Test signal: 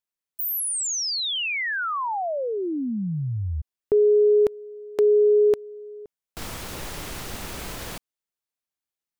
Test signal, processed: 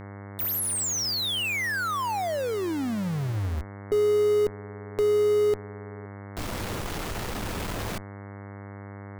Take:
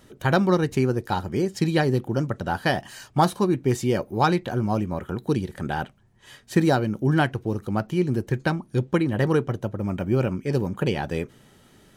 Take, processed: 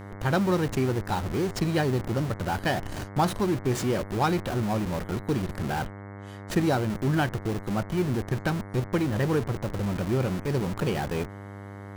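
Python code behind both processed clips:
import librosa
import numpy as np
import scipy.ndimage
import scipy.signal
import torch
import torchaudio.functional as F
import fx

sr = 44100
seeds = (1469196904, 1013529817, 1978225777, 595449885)

p1 = fx.schmitt(x, sr, flips_db=-34.5)
p2 = x + (p1 * 10.0 ** (-3.5 / 20.0))
p3 = fx.dmg_buzz(p2, sr, base_hz=100.0, harmonics=22, level_db=-34.0, tilt_db=-5, odd_only=False)
y = p3 * 10.0 ** (-6.5 / 20.0)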